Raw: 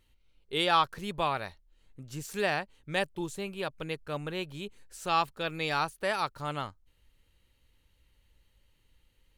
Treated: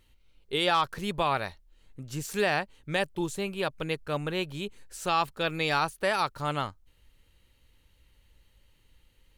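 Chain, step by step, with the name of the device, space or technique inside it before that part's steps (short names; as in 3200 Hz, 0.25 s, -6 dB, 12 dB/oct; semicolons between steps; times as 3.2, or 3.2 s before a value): clipper into limiter (hard clip -14 dBFS, distortion -32 dB; limiter -19.5 dBFS, peak gain reduction 5.5 dB); gain +4.5 dB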